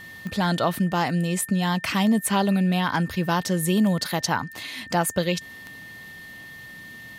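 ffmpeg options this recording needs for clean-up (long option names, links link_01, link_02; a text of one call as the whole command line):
ffmpeg -i in.wav -af "adeclick=threshold=4,bandreject=frequency=1800:width=30" out.wav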